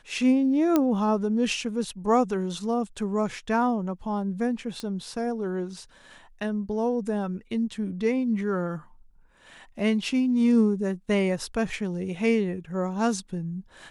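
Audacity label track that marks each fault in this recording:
0.760000	0.760000	pop -9 dBFS
4.800000	4.800000	pop -20 dBFS

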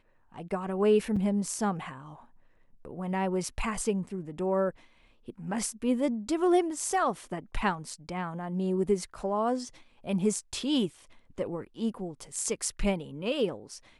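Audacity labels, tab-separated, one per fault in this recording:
1.160000	1.170000	gap 5.2 ms

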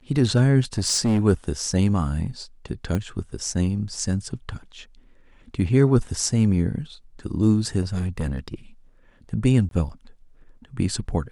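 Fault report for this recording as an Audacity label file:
0.780000	1.200000	clipped -16.5 dBFS
2.950000	2.950000	pop -14 dBFS
7.810000	8.540000	clipped -21 dBFS
9.690000	9.710000	gap 22 ms

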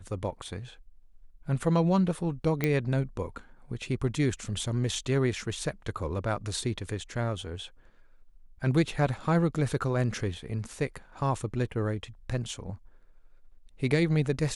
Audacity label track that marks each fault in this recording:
2.640000	2.640000	pop -13 dBFS

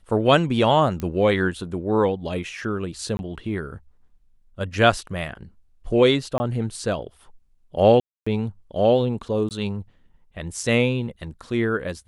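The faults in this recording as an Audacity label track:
1.000000	1.000000	pop -16 dBFS
3.170000	3.190000	gap 21 ms
6.380000	6.400000	gap 20 ms
8.000000	8.270000	gap 0.265 s
9.490000	9.510000	gap 18 ms

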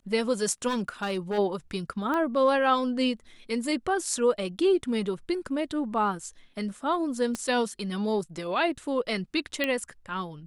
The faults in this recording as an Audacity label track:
0.670000	1.390000	clipped -24 dBFS
2.140000	2.140000	pop -18 dBFS
7.350000	7.350000	pop -18 dBFS
9.640000	9.640000	pop -13 dBFS

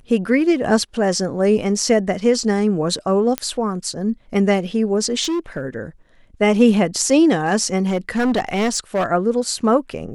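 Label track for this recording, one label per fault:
3.380000	3.380000	pop -5 dBFS
5.230000	5.650000	clipped -18 dBFS
7.870000	9.060000	clipped -14.5 dBFS

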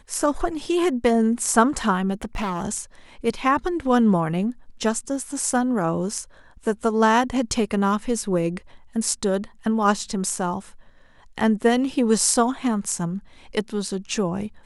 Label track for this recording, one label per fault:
2.220000	2.650000	clipped -22.5 dBFS

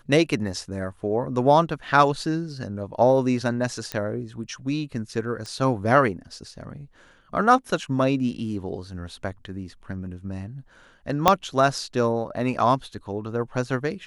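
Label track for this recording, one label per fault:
3.920000	3.920000	pop -13 dBFS
5.460000	5.460000	pop -23 dBFS
11.280000	11.280000	pop -1 dBFS

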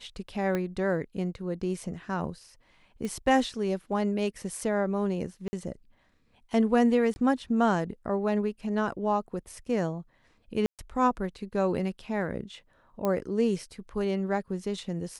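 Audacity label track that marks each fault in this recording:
0.550000	0.550000	pop -17 dBFS
3.050000	3.050000	pop -23 dBFS
5.480000	5.530000	gap 50 ms
7.140000	7.160000	gap 20 ms
10.660000	10.790000	gap 0.127 s
13.050000	13.050000	pop -16 dBFS

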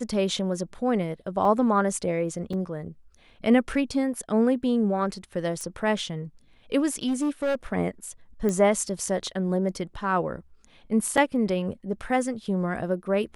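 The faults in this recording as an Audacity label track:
1.450000	1.450000	gap 2.5 ms
2.530000	2.530000	gap 4.4 ms
5.610000	5.610000	pop -22 dBFS
7.070000	7.550000	clipped -21.5 dBFS
8.490000	8.490000	pop -16 dBFS
11.170000	11.180000	gap 5.7 ms

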